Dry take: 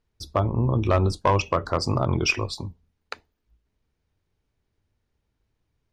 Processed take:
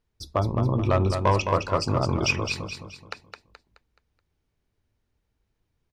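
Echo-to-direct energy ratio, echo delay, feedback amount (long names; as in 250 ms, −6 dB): −5.5 dB, 213 ms, 40%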